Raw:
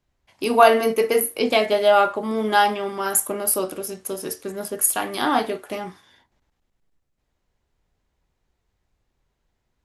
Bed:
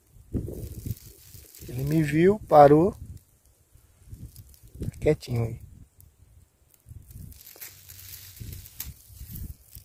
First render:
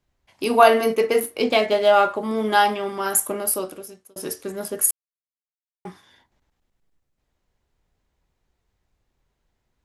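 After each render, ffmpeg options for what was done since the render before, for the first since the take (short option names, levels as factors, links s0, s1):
-filter_complex "[0:a]asettb=1/sr,asplit=3[s0][s1][s2];[s0]atrim=end=0.954[s3];[s1]atrim=start=0.95:end=2.09,asetpts=PTS-STARTPTS,afade=t=in:d=0.004:c=qsin,afade=t=out:st=1.136:d=0.004:c=qsin,adynamicsmooth=sensitivity=6.5:basefreq=5700[s4];[s2]atrim=start=2.086[s5];[s3][s4]acrossfade=d=0.004:c1=hsin:c2=qsin[s6];[s6][s5]acrossfade=d=0.004:c1=qsin:c2=hsin,asplit=4[s7][s8][s9][s10];[s7]atrim=end=4.16,asetpts=PTS-STARTPTS,afade=t=out:st=3.37:d=0.79[s11];[s8]atrim=start=4.16:end=4.91,asetpts=PTS-STARTPTS,afade=t=in:d=0.004:c=hsin,afade=t=out:st=0.746:d=0.004:c=hsin[s12];[s9]atrim=start=4.91:end=5.85,asetpts=PTS-STARTPTS,volume=0[s13];[s10]atrim=start=5.85,asetpts=PTS-STARTPTS,afade=t=in:d=0.004:c=hsin[s14];[s11][s12][s13][s14]concat=n=4:v=0:a=1"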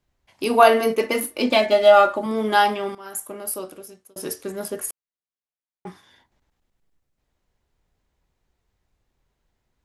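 -filter_complex "[0:a]asettb=1/sr,asplit=3[s0][s1][s2];[s0]atrim=end=1.004[s3];[s1]atrim=start=1:end=2.26,asetpts=PTS-STARTPTS,afade=t=in:d=0.004:c=qsin,afade=t=out:st=1.256:d=0.004:c=qsin,aecho=1:1:3.4:0.65,atrim=end_sample=55566[s4];[s2]atrim=start=2.256[s5];[s3][s4]acrossfade=d=0.004:c1=hsin:c2=qsin[s6];[s6][s5]acrossfade=d=0.004:c1=qsin:c2=hsin,asettb=1/sr,asplit=3[s7][s8][s9];[s7]atrim=end=4.804[s10];[s8]atrim=start=4.8:end=5.87,asetpts=PTS-STARTPTS,afade=t=in:d=0.004:c=qsin,afade=t=out:st=1.066:d=0.004:c=qsin,lowpass=f=2800:p=1[s11];[s9]atrim=start=5.866[s12];[s10][s11]acrossfade=d=0.004:c1=hsin:c2=qsin[s13];[s13][s12]acrossfade=d=0.004:c1=qsin:c2=hsin,asplit=2[s14][s15];[s14]atrim=end=2.95,asetpts=PTS-STARTPTS,afade=t=out:st=2.946:d=0.004:c=hsin:silence=0.141254[s16];[s15]atrim=start=2.95,asetpts=PTS-STARTPTS,afade=t=in:d=1.28:silence=0.141254[s17];[s16][s17]concat=n=2:v=0:a=1"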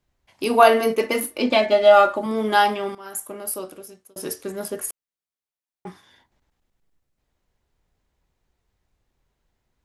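-filter_complex "[0:a]asettb=1/sr,asplit=3[s0][s1][s2];[s0]atrim=end=1.384[s3];[s1]atrim=start=1.38:end=1.91,asetpts=PTS-STARTPTS,afade=t=in:d=0.004:c=qsin,afade=t=out:st=0.526:d=0.004:c=qsin,highshelf=f=8400:g=-11.5[s4];[s2]atrim=start=1.906[s5];[s3][s4]acrossfade=d=0.004:c1=hsin:c2=qsin[s6];[s6][s5]acrossfade=d=0.004:c1=qsin:c2=hsin"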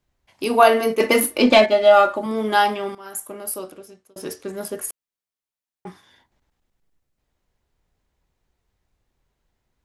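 -filter_complex "[0:a]asettb=1/sr,asplit=3[s0][s1][s2];[s0]atrim=end=1.004[s3];[s1]atrim=start=1:end=1.66,asetpts=PTS-STARTPTS,afade=t=in:d=0.004:c=qsin,afade=t=out:st=0.656:d=0.004:c=qsin,acontrast=73[s4];[s2]atrim=start=1.656[s5];[s3][s4]acrossfade=d=0.004:c1=hsin:c2=qsin[s6];[s6][s5]acrossfade=d=0.004:c1=qsin:c2=hsin,asettb=1/sr,asplit=3[s7][s8][s9];[s7]atrim=end=3.714[s10];[s8]atrim=start=3.71:end=4.53,asetpts=PTS-STARTPTS,afade=t=in:d=0.004:c=qsin,afade=t=out:st=0.816:d=0.004:c=qsin,adynamicsmooth=sensitivity=6:basefreq=8000[s11];[s9]atrim=start=4.526[s12];[s10][s11]acrossfade=d=0.004:c1=hsin:c2=qsin[s13];[s13][s12]acrossfade=d=0.004:c1=qsin:c2=hsin"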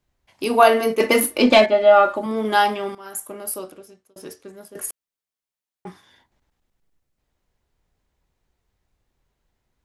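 -filter_complex "[0:a]asettb=1/sr,asplit=3[s0][s1][s2];[s0]atrim=end=1.664[s3];[s1]atrim=start=1.66:end=2.45,asetpts=PTS-STARTPTS,afade=t=in:d=0.004:c=qsin,afade=t=out:st=0.786:d=0.004:c=qsin,acrossover=split=3000[s4][s5];[s5]acompressor=threshold=0.00398:ratio=4:attack=1:release=60[s6];[s4][s6]amix=inputs=2:normalize=0[s7];[s2]atrim=start=2.446[s8];[s3][s7]acrossfade=d=0.004:c1=hsin:c2=qsin[s9];[s9][s8]acrossfade=d=0.004:c1=qsin:c2=hsin,asplit=2[s10][s11];[s10]atrim=end=4.75,asetpts=PTS-STARTPTS,afade=t=out:st=3.54:d=1.21:silence=0.158489[s12];[s11]atrim=start=4.75,asetpts=PTS-STARTPTS,afade=t=in:d=0.004:c=hsin:silence=0.158489[s13];[s12][s13]concat=n=2:v=0:a=1"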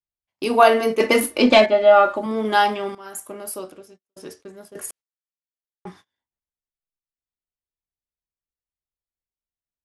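-af "lowpass=9800,agate=range=0.0355:threshold=0.00447:ratio=16:detection=peak"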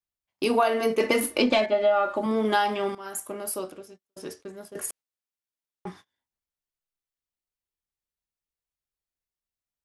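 -af "acompressor=threshold=0.112:ratio=6"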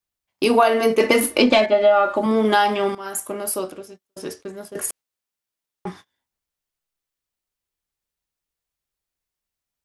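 -af "volume=2.11,alimiter=limit=0.708:level=0:latency=1"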